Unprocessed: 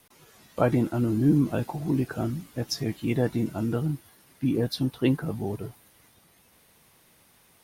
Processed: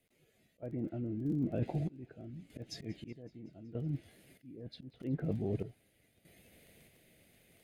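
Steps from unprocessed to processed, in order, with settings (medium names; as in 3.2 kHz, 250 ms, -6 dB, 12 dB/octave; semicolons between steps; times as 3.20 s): band-stop 5.6 kHz, Q 6.2; low-pass that closes with the level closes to 1.5 kHz, closed at -19.5 dBFS; FFT filter 660 Hz 0 dB, 1 kHz -22 dB, 2.1 kHz 0 dB, 4.3 kHz -7 dB; in parallel at +1 dB: peak limiter -18 dBFS, peak gain reduction 7 dB; on the sum: slow attack 199 ms; reverse; compression 16:1, threshold -27 dBFS, peak gain reduction 16 dB; reverse; crackle 20 per s -45 dBFS; random-step tremolo 1.6 Hz, depth 85%; feedback echo behind a high-pass 187 ms, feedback 68%, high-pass 1.9 kHz, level -22.5 dB; trim -3 dB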